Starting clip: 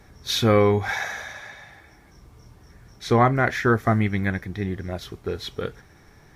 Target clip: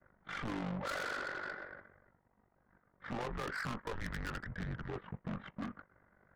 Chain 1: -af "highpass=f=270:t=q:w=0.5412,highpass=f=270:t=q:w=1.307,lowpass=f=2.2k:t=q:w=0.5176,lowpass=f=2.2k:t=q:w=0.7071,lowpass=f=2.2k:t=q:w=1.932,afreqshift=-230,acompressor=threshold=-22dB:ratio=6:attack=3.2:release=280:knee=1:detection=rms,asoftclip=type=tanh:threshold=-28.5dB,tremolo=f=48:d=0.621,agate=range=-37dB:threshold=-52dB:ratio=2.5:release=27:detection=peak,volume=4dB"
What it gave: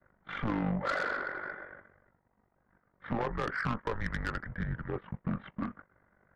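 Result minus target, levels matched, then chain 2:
soft clip: distortion -6 dB
-af "highpass=f=270:t=q:w=0.5412,highpass=f=270:t=q:w=1.307,lowpass=f=2.2k:t=q:w=0.5176,lowpass=f=2.2k:t=q:w=0.7071,lowpass=f=2.2k:t=q:w=1.932,afreqshift=-230,acompressor=threshold=-22dB:ratio=6:attack=3.2:release=280:knee=1:detection=rms,asoftclip=type=tanh:threshold=-38.5dB,tremolo=f=48:d=0.621,agate=range=-37dB:threshold=-52dB:ratio=2.5:release=27:detection=peak,volume=4dB"

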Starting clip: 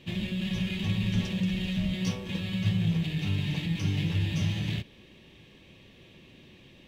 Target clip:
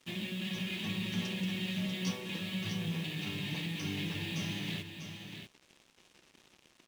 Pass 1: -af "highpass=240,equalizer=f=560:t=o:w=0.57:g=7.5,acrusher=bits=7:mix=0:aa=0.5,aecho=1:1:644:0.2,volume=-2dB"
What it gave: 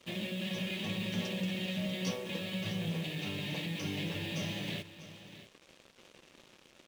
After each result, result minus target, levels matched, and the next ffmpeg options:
500 Hz band +5.0 dB; echo-to-direct -6.5 dB
-af "highpass=240,equalizer=f=560:t=o:w=0.57:g=-3.5,acrusher=bits=7:mix=0:aa=0.5,aecho=1:1:644:0.2,volume=-2dB"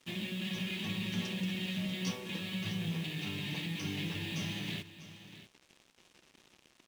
echo-to-direct -6.5 dB
-af "highpass=240,equalizer=f=560:t=o:w=0.57:g=-3.5,acrusher=bits=7:mix=0:aa=0.5,aecho=1:1:644:0.422,volume=-2dB"

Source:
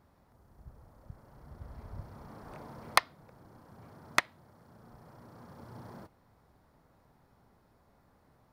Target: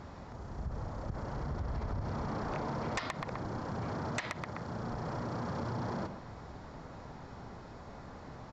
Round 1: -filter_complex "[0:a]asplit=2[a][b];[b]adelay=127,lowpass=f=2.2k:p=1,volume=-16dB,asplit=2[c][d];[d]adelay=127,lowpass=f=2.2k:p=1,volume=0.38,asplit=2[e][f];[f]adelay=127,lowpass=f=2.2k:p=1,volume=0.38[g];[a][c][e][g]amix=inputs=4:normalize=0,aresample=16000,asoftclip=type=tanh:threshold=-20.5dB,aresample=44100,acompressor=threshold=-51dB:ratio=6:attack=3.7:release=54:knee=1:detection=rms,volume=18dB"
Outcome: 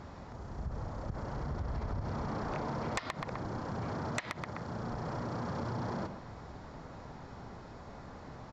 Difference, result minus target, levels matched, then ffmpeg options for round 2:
soft clip: distortion -6 dB
-filter_complex "[0:a]asplit=2[a][b];[b]adelay=127,lowpass=f=2.2k:p=1,volume=-16dB,asplit=2[c][d];[d]adelay=127,lowpass=f=2.2k:p=1,volume=0.38,asplit=2[e][f];[f]adelay=127,lowpass=f=2.2k:p=1,volume=0.38[g];[a][c][e][g]amix=inputs=4:normalize=0,aresample=16000,asoftclip=type=tanh:threshold=-31.5dB,aresample=44100,acompressor=threshold=-51dB:ratio=6:attack=3.7:release=54:knee=1:detection=rms,volume=18dB"

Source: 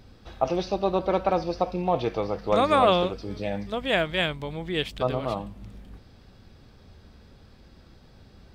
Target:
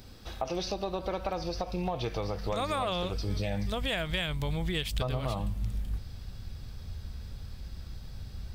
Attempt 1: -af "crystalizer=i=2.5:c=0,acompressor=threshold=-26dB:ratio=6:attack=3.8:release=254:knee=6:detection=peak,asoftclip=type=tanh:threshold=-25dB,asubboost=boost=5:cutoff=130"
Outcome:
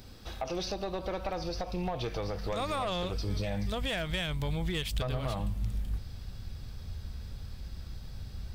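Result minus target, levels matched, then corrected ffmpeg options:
soft clip: distortion +14 dB
-af "crystalizer=i=2.5:c=0,acompressor=threshold=-26dB:ratio=6:attack=3.8:release=254:knee=6:detection=peak,asoftclip=type=tanh:threshold=-15.5dB,asubboost=boost=5:cutoff=130"

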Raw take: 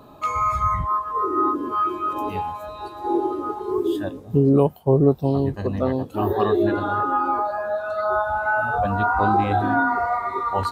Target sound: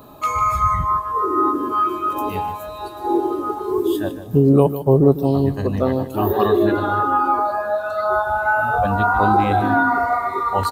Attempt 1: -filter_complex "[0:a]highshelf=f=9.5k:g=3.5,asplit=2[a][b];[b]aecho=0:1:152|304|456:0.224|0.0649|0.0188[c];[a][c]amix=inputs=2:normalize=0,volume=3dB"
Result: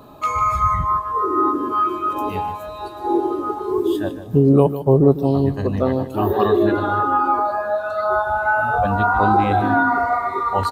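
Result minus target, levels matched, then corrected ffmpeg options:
8000 Hz band -4.0 dB
-filter_complex "[0:a]highshelf=f=9.5k:g=14,asplit=2[a][b];[b]aecho=0:1:152|304|456:0.224|0.0649|0.0188[c];[a][c]amix=inputs=2:normalize=0,volume=3dB"

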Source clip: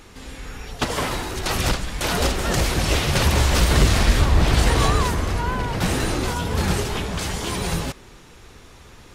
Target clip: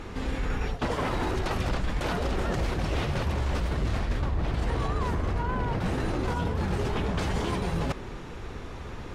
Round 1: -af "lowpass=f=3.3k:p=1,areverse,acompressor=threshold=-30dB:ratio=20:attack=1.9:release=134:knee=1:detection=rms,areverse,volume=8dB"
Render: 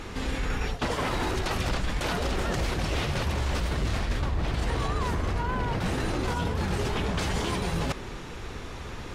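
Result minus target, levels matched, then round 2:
4000 Hz band +4.5 dB
-af "lowpass=f=1.4k:p=1,areverse,acompressor=threshold=-30dB:ratio=20:attack=1.9:release=134:knee=1:detection=rms,areverse,volume=8dB"

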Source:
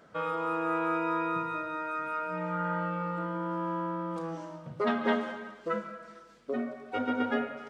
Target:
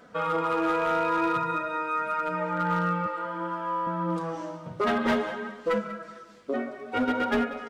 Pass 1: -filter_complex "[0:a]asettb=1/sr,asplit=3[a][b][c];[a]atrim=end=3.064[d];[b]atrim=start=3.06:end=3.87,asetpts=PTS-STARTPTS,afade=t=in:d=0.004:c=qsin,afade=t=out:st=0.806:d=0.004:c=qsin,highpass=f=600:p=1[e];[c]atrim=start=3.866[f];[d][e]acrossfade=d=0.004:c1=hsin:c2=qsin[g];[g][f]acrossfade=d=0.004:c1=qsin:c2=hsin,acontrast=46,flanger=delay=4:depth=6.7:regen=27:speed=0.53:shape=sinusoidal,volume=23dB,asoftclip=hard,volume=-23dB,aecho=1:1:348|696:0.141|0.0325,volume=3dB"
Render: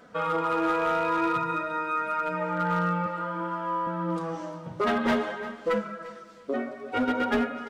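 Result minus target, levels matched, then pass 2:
echo 0.158 s late
-filter_complex "[0:a]asettb=1/sr,asplit=3[a][b][c];[a]atrim=end=3.064[d];[b]atrim=start=3.06:end=3.87,asetpts=PTS-STARTPTS,afade=t=in:d=0.004:c=qsin,afade=t=out:st=0.806:d=0.004:c=qsin,highpass=f=600:p=1[e];[c]atrim=start=3.866[f];[d][e]acrossfade=d=0.004:c1=hsin:c2=qsin[g];[g][f]acrossfade=d=0.004:c1=qsin:c2=hsin,acontrast=46,flanger=delay=4:depth=6.7:regen=27:speed=0.53:shape=sinusoidal,volume=23dB,asoftclip=hard,volume=-23dB,aecho=1:1:190|380:0.141|0.0325,volume=3dB"

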